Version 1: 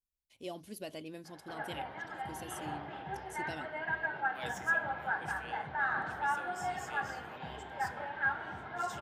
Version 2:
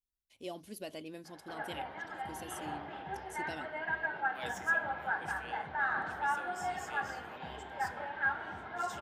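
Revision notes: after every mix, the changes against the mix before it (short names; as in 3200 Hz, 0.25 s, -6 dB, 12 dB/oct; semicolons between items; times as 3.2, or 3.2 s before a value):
master: add bell 130 Hz -7 dB 0.46 oct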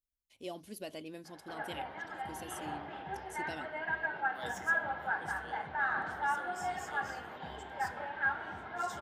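second voice: add Butterworth band-stop 2500 Hz, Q 2.2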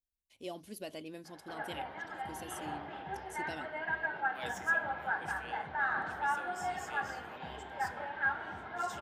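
second voice: remove Butterworth band-stop 2500 Hz, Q 2.2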